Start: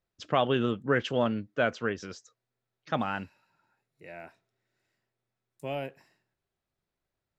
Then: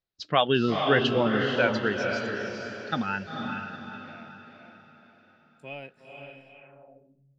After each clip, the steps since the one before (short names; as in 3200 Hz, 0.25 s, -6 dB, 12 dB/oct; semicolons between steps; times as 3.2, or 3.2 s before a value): spectral noise reduction 11 dB; diffused feedback echo 0.467 s, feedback 45%, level -3.5 dB; low-pass sweep 4300 Hz -> 150 Hz, 6.47–7.27; gain +3.5 dB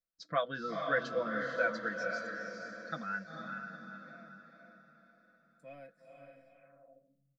fixed phaser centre 570 Hz, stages 8; comb 6 ms, depth 72%; dynamic EQ 250 Hz, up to -6 dB, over -42 dBFS, Q 1.1; gain -7.5 dB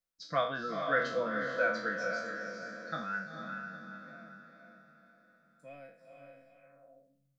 spectral trails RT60 0.50 s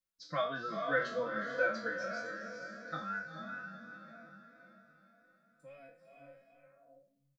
endless flanger 3.4 ms +3 Hz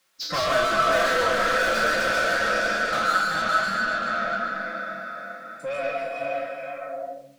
overdrive pedal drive 36 dB, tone 4000 Hz, clips at -19 dBFS; reverb RT60 0.45 s, pre-delay 0.105 s, DRR -0.5 dB